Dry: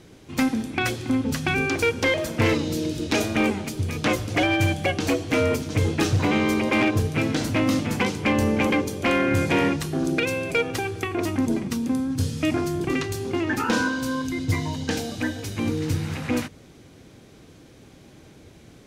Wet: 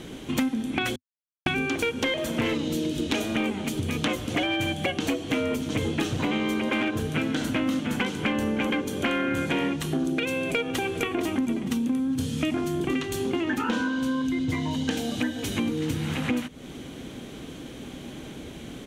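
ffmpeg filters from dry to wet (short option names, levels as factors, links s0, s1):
-filter_complex "[0:a]asettb=1/sr,asplit=3[s0][s1][s2];[s0]atrim=end=6.554[s3];[s1]atrim=start=6.55:end=9.53,asetpts=PTS-STARTPTS,afade=t=in:d=0.004:c=qsin,afade=t=out:st=2.976:d=0.004:c=qsin,equalizer=f=1500:w=5:g=7[s4];[s2]atrim=start=9.526[s5];[s3][s4]acrossfade=d=0.004:c1=hsin:c2=qsin[s6];[s6][s5]acrossfade=d=0.004:c1=qsin:c2=hsin,asplit=2[s7][s8];[s8]afade=t=in:st=10.35:d=0.01,afade=t=out:st=11.06:d=0.01,aecho=0:1:460|920|1380|1840|2300:0.251189|0.113035|0.0508657|0.0228896|0.0103003[s9];[s7][s9]amix=inputs=2:normalize=0,asettb=1/sr,asplit=3[s10][s11][s12];[s10]atrim=end=13.584[s13];[s11]atrim=start=13.58:end=14.71,asetpts=PTS-STARTPTS,afade=t=in:d=0.004:c=qsin,afade=t=out:st=1.126:d=0.004:c=qsin,highshelf=f=8200:g=-9.5[s14];[s12]atrim=start=14.706[s15];[s13][s14]acrossfade=d=0.004:c1=hsin:c2=qsin[s16];[s16][s15]acrossfade=d=0.004:c1=qsin:c2=hsin,asplit=3[s17][s18][s19];[s17]atrim=end=0.96,asetpts=PTS-STARTPTS,afade=t=out:st=0.956:d=0.004:c=hsin[s20];[s18]atrim=start=0.96:end=1.46,asetpts=PTS-STARTPTS,volume=0[s21];[s19]atrim=start=1.46,asetpts=PTS-STARTPTS,afade=t=in:d=0.004:c=hsin[s22];[s20][s21][s22]concat=n=3:v=0:a=1,equalizer=f=100:t=o:w=0.33:g=-11,equalizer=f=250:t=o:w=0.33:g=6,equalizer=f=3150:t=o:w=0.33:g=7,equalizer=f=5000:t=o:w=0.33:g=-7,acompressor=threshold=0.02:ratio=5,volume=2.66"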